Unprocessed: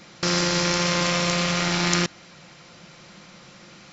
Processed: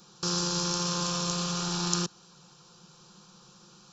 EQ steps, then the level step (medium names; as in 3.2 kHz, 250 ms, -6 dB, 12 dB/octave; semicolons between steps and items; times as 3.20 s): treble shelf 5.5 kHz +8 dB; static phaser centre 410 Hz, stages 8; -6.5 dB